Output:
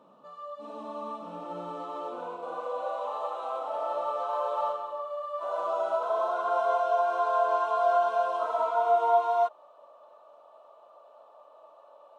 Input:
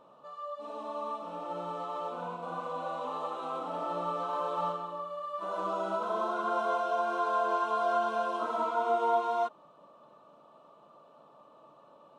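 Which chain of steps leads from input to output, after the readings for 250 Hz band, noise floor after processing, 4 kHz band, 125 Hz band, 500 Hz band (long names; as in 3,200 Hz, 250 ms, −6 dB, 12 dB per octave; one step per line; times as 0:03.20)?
−5.0 dB, −56 dBFS, −1.5 dB, can't be measured, +5.0 dB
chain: high-pass filter sweep 200 Hz → 620 Hz, 0:01.49–0:03.08
level −1.5 dB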